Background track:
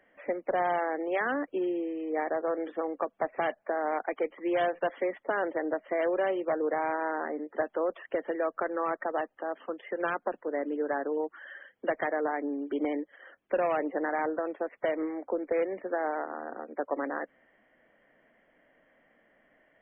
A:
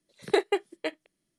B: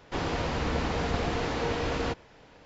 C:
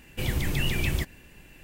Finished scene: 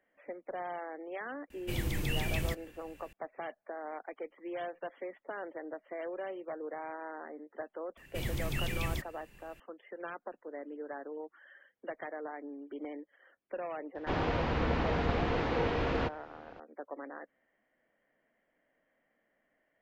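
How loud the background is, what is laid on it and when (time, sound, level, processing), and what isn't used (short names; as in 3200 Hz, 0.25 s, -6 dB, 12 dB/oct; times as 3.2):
background track -11.5 dB
1.5 add C -6.5 dB
7.97 add C -8 dB
13.95 add B -1.5 dB + LPF 3100 Hz
not used: A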